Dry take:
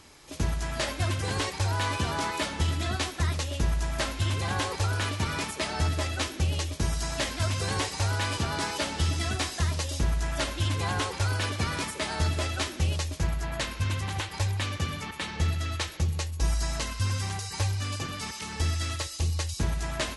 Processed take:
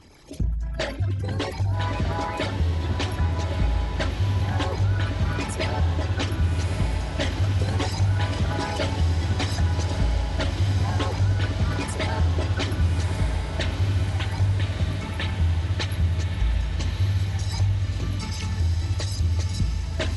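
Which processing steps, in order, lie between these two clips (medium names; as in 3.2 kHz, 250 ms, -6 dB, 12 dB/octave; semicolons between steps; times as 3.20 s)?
resonances exaggerated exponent 2; peaking EQ 1.1 kHz -4.5 dB 0.38 oct; on a send: echo that smears into a reverb 1260 ms, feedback 65%, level -5 dB; on the sum: trim +3 dB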